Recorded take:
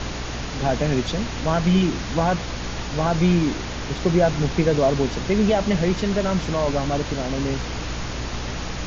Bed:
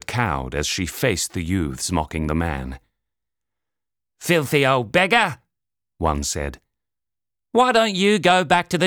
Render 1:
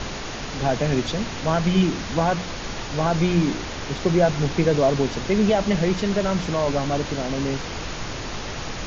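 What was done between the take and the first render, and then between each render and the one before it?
de-hum 60 Hz, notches 5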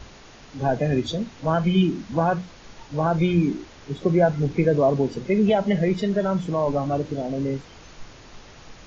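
noise print and reduce 15 dB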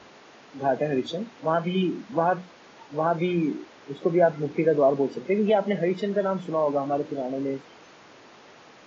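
HPF 270 Hz 12 dB/oct; high shelf 4500 Hz -12 dB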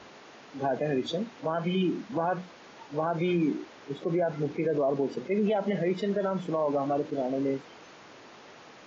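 limiter -19 dBFS, peak gain reduction 10.5 dB; attack slew limiter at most 450 dB/s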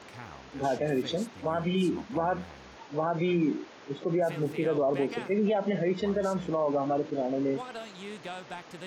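add bed -24.5 dB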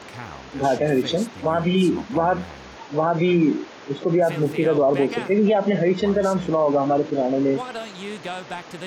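gain +8.5 dB

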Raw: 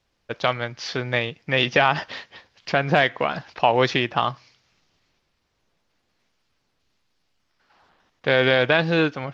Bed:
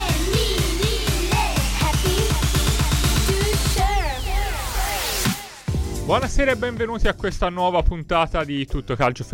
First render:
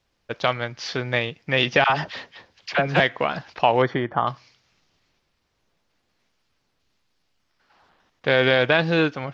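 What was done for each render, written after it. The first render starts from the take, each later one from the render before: 1.84–3 dispersion lows, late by 58 ms, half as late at 760 Hz; 3.82–4.27 polynomial smoothing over 41 samples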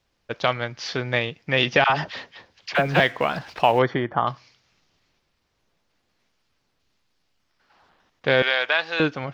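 2.75–3.79 G.711 law mismatch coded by mu; 8.42–9 HPF 870 Hz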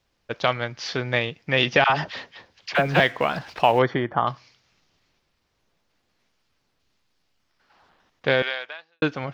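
8.28–9.02 fade out quadratic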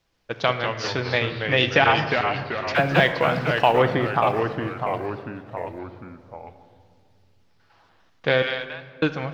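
shoebox room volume 2500 m³, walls mixed, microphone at 0.69 m; echoes that change speed 0.143 s, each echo -2 st, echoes 3, each echo -6 dB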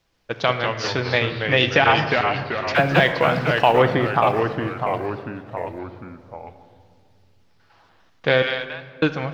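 gain +2.5 dB; limiter -3 dBFS, peak gain reduction 2.5 dB

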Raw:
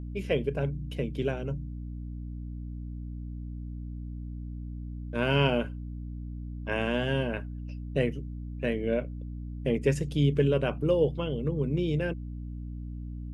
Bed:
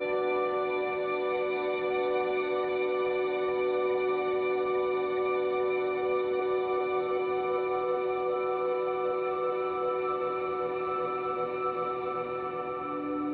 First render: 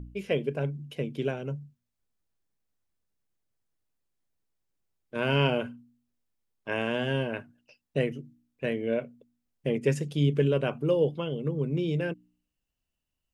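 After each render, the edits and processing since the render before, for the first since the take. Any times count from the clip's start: de-hum 60 Hz, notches 5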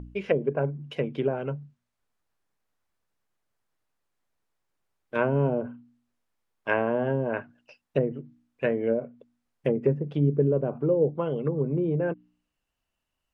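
treble ducked by the level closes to 440 Hz, closed at -23 dBFS; bell 1100 Hz +9.5 dB 2.7 oct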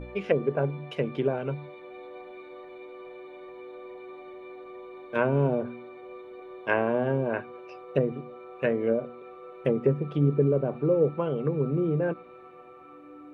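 add bed -15 dB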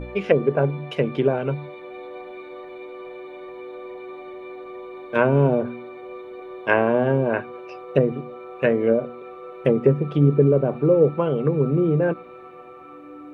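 gain +6.5 dB

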